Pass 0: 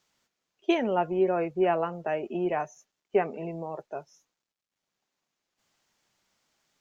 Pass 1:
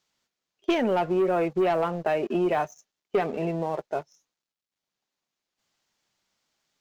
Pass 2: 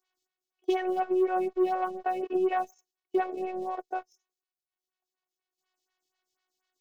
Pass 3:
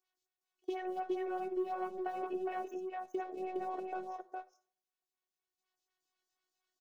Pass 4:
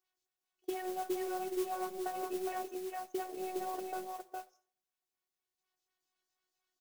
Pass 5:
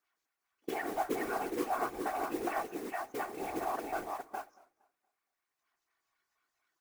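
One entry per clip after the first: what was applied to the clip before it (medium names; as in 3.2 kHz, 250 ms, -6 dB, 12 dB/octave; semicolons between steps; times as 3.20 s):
peaking EQ 4.1 kHz +3 dB 0.98 oct; waveshaping leveller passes 2; compression 4:1, threshold -21 dBFS, peak gain reduction 5.5 dB
robot voice 370 Hz; bass shelf 68 Hz -9.5 dB; lamp-driven phase shifter 4.1 Hz
compression, threshold -29 dBFS, peak gain reduction 8.5 dB; delay 412 ms -3.5 dB; reverberation RT60 0.50 s, pre-delay 18 ms, DRR 14.5 dB; trim -6 dB
modulation noise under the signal 14 dB
high-order bell 1.4 kHz +9.5 dB; whisper effect; modulated delay 233 ms, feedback 31%, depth 127 cents, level -23 dB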